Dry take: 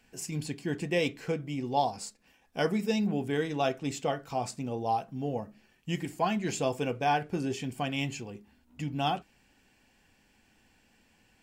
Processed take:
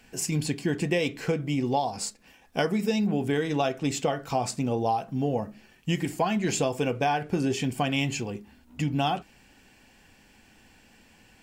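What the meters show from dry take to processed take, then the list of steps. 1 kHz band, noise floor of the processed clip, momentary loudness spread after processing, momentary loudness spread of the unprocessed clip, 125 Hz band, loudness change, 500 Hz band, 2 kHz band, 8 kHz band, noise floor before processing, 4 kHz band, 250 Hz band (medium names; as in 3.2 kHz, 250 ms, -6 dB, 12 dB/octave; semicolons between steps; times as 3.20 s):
+2.0 dB, -58 dBFS, 8 LU, 10 LU, +5.5 dB, +4.0 dB, +3.5 dB, +4.0 dB, +7.5 dB, -67 dBFS, +4.5 dB, +5.0 dB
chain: compression 12:1, threshold -30 dBFS, peak gain reduction 10 dB; trim +8.5 dB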